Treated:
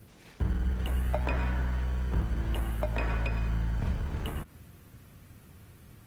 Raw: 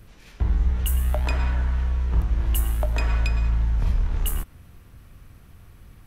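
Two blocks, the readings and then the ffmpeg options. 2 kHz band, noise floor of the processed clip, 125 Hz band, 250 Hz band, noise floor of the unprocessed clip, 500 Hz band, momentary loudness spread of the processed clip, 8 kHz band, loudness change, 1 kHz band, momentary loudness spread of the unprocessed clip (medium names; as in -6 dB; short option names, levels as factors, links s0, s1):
-3.0 dB, -55 dBFS, -6.5 dB, 0.0 dB, -49 dBFS, -1.0 dB, 5 LU, -15.5 dB, -7.0 dB, -2.5 dB, 4 LU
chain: -filter_complex "[0:a]asplit=2[s0][s1];[s1]acrusher=samples=29:mix=1:aa=0.000001,volume=0.422[s2];[s0][s2]amix=inputs=2:normalize=0,acrossover=split=2900[s3][s4];[s4]acompressor=threshold=0.00178:ratio=4:attack=1:release=60[s5];[s3][s5]amix=inputs=2:normalize=0,highpass=90,highshelf=f=5100:g=5,volume=0.708" -ar 48000 -c:a libopus -b:a 20k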